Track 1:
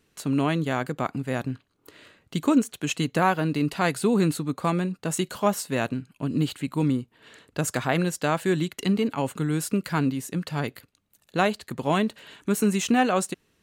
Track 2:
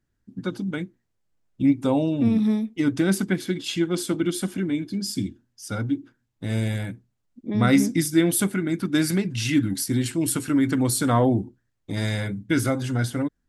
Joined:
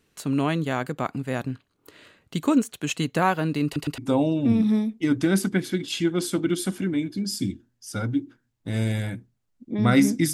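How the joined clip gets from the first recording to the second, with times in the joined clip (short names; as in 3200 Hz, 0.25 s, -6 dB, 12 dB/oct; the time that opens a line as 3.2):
track 1
3.65 stutter in place 0.11 s, 3 plays
3.98 switch to track 2 from 1.74 s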